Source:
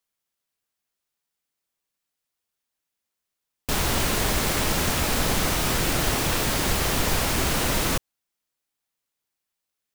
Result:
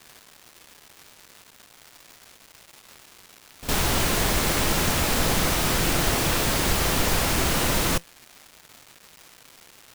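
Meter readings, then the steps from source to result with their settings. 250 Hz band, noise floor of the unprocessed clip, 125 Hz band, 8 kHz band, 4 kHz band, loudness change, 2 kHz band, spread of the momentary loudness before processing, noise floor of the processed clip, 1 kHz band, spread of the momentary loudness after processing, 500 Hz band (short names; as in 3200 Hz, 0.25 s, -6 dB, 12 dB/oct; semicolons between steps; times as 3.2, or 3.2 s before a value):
+1.0 dB, -84 dBFS, +0.5 dB, +1.0 dB, +1.0 dB, +1.0 dB, +1.0 dB, 2 LU, -53 dBFS, +1.0 dB, 2 LU, +1.0 dB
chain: resonator 170 Hz, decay 0.16 s, harmonics all, mix 30%; crackle 590/s -38 dBFS; reverse echo 59 ms -14.5 dB; gain +3 dB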